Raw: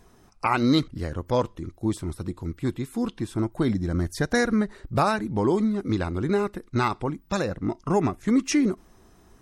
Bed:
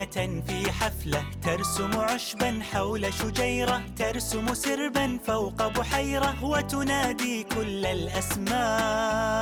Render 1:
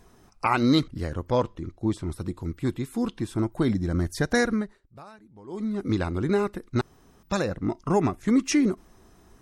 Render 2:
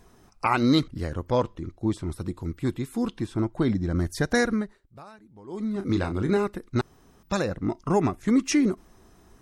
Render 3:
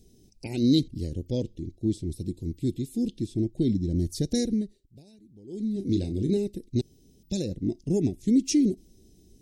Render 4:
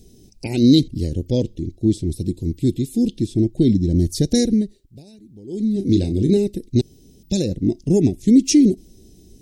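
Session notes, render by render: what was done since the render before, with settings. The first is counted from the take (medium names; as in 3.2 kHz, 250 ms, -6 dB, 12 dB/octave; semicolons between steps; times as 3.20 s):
1.27–2.11 s: distance through air 61 m; 4.43–5.85 s: dip -24 dB, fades 0.38 s linear; 6.81–7.23 s: room tone
3.26–3.96 s: distance through air 56 m; 5.73–6.37 s: doubling 31 ms -8.5 dB
Chebyshev band-stop 340–4200 Hz, order 2
trim +9 dB; peak limiter -3 dBFS, peak gain reduction 1.5 dB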